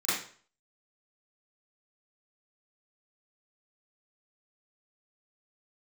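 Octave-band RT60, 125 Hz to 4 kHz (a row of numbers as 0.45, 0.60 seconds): 0.50, 0.40, 0.45, 0.45, 0.45, 0.40 seconds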